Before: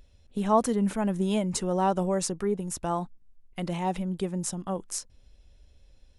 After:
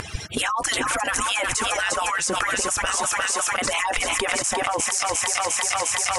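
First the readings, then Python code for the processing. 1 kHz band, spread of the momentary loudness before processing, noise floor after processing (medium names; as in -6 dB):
+7.0 dB, 11 LU, -34 dBFS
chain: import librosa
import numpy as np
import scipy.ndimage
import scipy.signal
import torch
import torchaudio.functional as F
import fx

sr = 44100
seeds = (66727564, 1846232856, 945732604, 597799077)

y = fx.hpss_only(x, sr, part='percussive')
y = fx.curve_eq(y, sr, hz=(100.0, 330.0, 1400.0), db=(0, -4, 11))
y = fx.rider(y, sr, range_db=10, speed_s=0.5)
y = scipy.signal.sosfilt(scipy.signal.butter(2, 9000.0, 'lowpass', fs=sr, output='sos'), y)
y = fx.peak_eq(y, sr, hz=4000.0, db=-8.5, octaves=0.72)
y = fx.notch(y, sr, hz=980.0, q=28.0)
y = fx.echo_thinned(y, sr, ms=354, feedback_pct=75, hz=290.0, wet_db=-13.0)
y = fx.env_flatten(y, sr, amount_pct=100)
y = F.gain(torch.from_numpy(y), -3.0).numpy()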